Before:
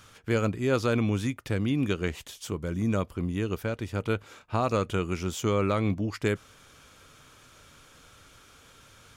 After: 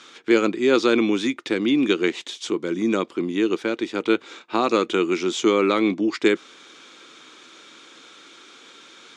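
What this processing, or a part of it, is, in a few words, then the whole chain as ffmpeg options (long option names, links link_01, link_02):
television speaker: -af "highpass=frequency=230:width=0.5412,highpass=frequency=230:width=1.3066,equalizer=frequency=340:width_type=q:width=4:gain=9,equalizer=frequency=620:width_type=q:width=4:gain=-5,equalizer=frequency=2200:width_type=q:width=4:gain=4,equalizer=frequency=3700:width_type=q:width=4:gain=8,lowpass=frequency=7600:width=0.5412,lowpass=frequency=7600:width=1.3066,volume=6.5dB"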